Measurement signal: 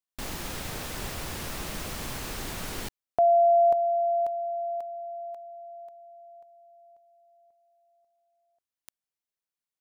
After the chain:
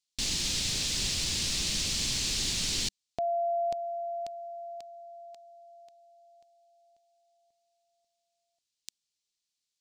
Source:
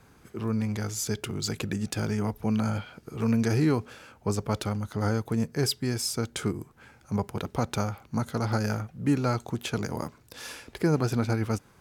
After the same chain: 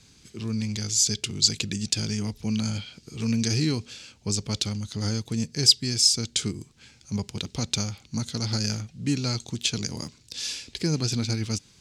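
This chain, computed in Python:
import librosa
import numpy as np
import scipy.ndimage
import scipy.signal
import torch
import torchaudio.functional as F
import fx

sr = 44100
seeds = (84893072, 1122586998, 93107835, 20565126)

y = fx.curve_eq(x, sr, hz=(200.0, 290.0, 430.0, 700.0, 1400.0, 2500.0, 4300.0, 7500.0, 14000.0), db=(0, -2, -6, -10, -9, 5, 14, 11, -10))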